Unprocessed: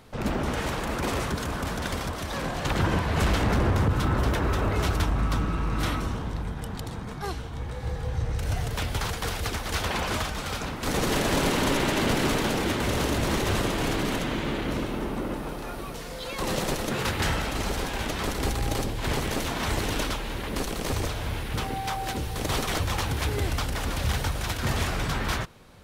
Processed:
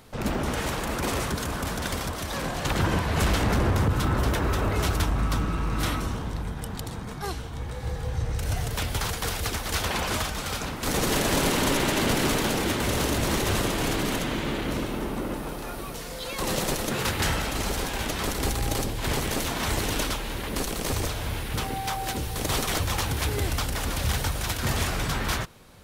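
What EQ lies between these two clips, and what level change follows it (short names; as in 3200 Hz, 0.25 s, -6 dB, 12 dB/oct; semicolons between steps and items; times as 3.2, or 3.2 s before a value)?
high shelf 6200 Hz +7 dB; 0.0 dB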